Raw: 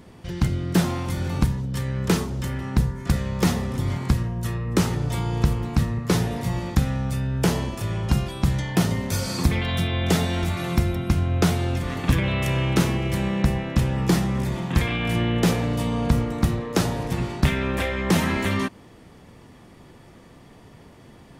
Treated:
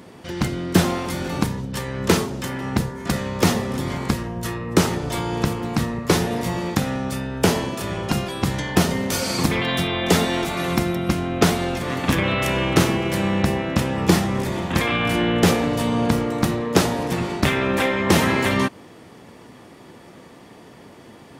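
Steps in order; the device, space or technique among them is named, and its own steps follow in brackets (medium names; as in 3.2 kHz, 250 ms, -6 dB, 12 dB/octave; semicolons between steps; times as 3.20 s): high-pass 240 Hz 12 dB/octave; bass shelf 450 Hz +2 dB; octave pedal (harmony voices -12 st -7 dB); trim +5 dB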